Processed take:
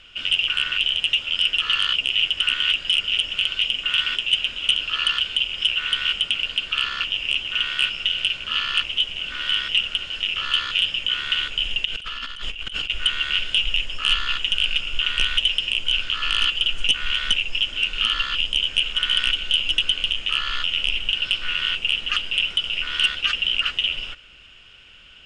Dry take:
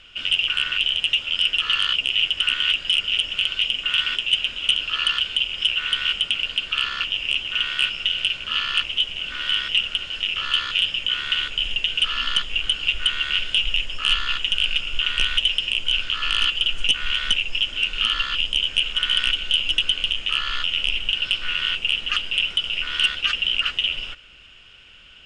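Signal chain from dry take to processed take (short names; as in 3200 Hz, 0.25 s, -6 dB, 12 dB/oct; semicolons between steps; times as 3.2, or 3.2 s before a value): 11.85–12.9 negative-ratio compressor -31 dBFS, ratio -1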